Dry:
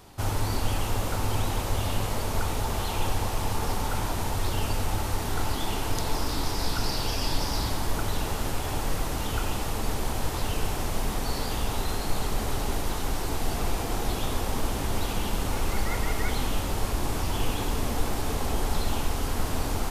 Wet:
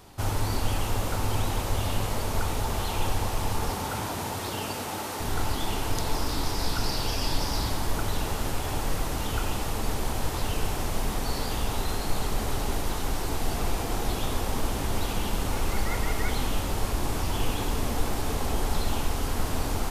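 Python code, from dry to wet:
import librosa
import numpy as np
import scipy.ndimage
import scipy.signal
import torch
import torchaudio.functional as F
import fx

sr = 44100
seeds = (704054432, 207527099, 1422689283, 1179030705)

y = fx.highpass(x, sr, hz=fx.line((3.69, 77.0), (5.19, 240.0)), slope=12, at=(3.69, 5.19), fade=0.02)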